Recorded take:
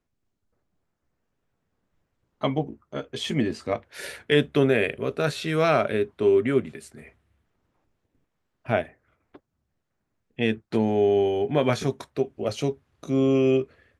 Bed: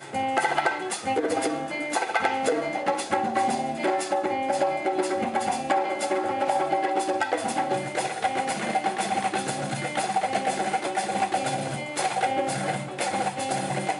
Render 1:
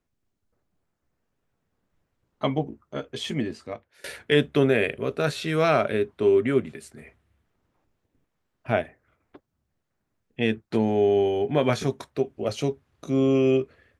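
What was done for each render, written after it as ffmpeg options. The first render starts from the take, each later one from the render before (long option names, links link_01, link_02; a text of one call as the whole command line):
ffmpeg -i in.wav -filter_complex "[0:a]asplit=2[link_01][link_02];[link_01]atrim=end=4.04,asetpts=PTS-STARTPTS,afade=type=out:start_time=3.06:duration=0.98:silence=0.0841395[link_03];[link_02]atrim=start=4.04,asetpts=PTS-STARTPTS,afade=type=in:duration=0.004:curve=hsin:silence=0.0841395[link_04];[link_03][link_04]concat=n=2:v=0:a=1" out.wav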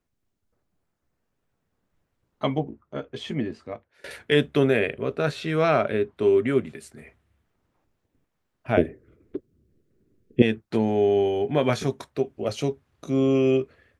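ffmpeg -i in.wav -filter_complex "[0:a]asettb=1/sr,asplit=3[link_01][link_02][link_03];[link_01]atrim=end=2.604[link_04];[link_02]atrim=start=2.6:end=4.11,asetpts=PTS-STARTPTS,afade=type=in:duration=0.004:curve=qsin,afade=type=out:start_time=1.506:duration=0.004:curve=qsin,lowpass=frequency=2300:poles=1[link_05];[link_03]atrim=start=4.106[link_06];[link_04][link_05]acrossfade=duration=0.004:curve1=hsin:curve2=qsin[link_07];[link_07][link_06]acrossfade=duration=0.004:curve1=qsin:curve2=hsin,asettb=1/sr,asplit=3[link_08][link_09][link_10];[link_08]atrim=end=4.794[link_11];[link_09]atrim=start=4.79:end=6.17,asetpts=PTS-STARTPTS,afade=type=in:duration=0.004:curve=qsin,afade=type=out:start_time=1.376:duration=0.004:curve=qsin,aemphasis=mode=reproduction:type=cd[link_12];[link_10]atrim=start=6.166[link_13];[link_11][link_12]acrossfade=duration=0.004:curve1=hsin:curve2=qsin[link_14];[link_14][link_13]acrossfade=duration=0.004:curve1=qsin:curve2=hsin,asettb=1/sr,asplit=3[link_15][link_16][link_17];[link_15]atrim=end=8.774[link_18];[link_16]atrim=start=8.77:end=10.42,asetpts=PTS-STARTPTS,afade=type=in:duration=0.004:curve=qsin,afade=type=out:start_time=1.646:duration=0.004:curve=qsin,lowshelf=frequency=560:width_type=q:width=3:gain=12[link_19];[link_17]atrim=start=10.416[link_20];[link_18][link_19]acrossfade=duration=0.004:curve1=hsin:curve2=qsin[link_21];[link_21][link_20]acrossfade=duration=0.004:curve1=qsin:curve2=hsin" out.wav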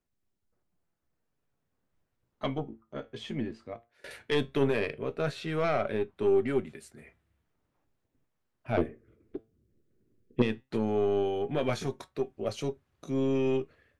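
ffmpeg -i in.wav -af "aeval=exprs='(tanh(3.98*val(0)+0.4)-tanh(0.4))/3.98':channel_layout=same,flanger=delay=5.2:depth=3.8:regen=81:speed=0.16:shape=sinusoidal" out.wav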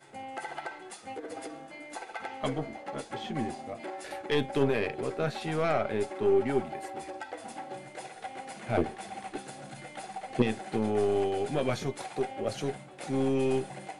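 ffmpeg -i in.wav -i bed.wav -filter_complex "[1:a]volume=-15dB[link_01];[0:a][link_01]amix=inputs=2:normalize=0" out.wav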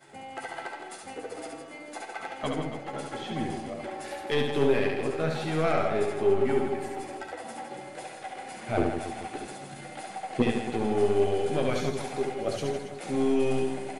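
ffmpeg -i in.wav -filter_complex "[0:a]asplit=2[link_01][link_02];[link_02]adelay=12,volume=-11dB[link_03];[link_01][link_03]amix=inputs=2:normalize=0,aecho=1:1:70|161|279.3|433.1|633:0.631|0.398|0.251|0.158|0.1" out.wav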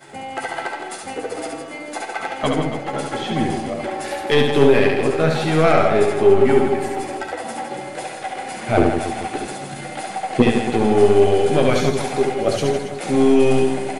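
ffmpeg -i in.wav -af "volume=11dB,alimiter=limit=-2dB:level=0:latency=1" out.wav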